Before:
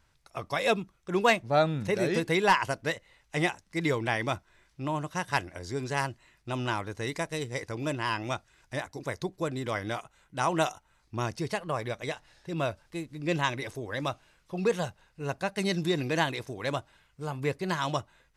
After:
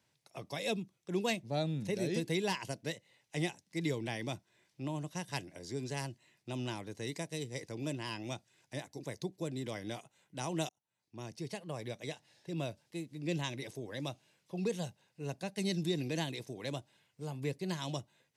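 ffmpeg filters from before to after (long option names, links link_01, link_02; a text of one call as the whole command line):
ffmpeg -i in.wav -filter_complex "[0:a]asplit=2[link_01][link_02];[link_01]atrim=end=10.69,asetpts=PTS-STARTPTS,afade=type=out:start_time=10.686:duration=0.004:curve=hsin[link_03];[link_02]atrim=start=10.69,asetpts=PTS-STARTPTS,afade=type=in:duration=1.15[link_04];[link_03][link_04]concat=n=2:v=0:a=1,highpass=frequency=120:width=0.5412,highpass=frequency=120:width=1.3066,equalizer=frequency=1300:width=1.9:gain=-10.5,acrossover=split=350|3000[link_05][link_06][link_07];[link_06]acompressor=threshold=-48dB:ratio=1.5[link_08];[link_05][link_08][link_07]amix=inputs=3:normalize=0,volume=-3.5dB" out.wav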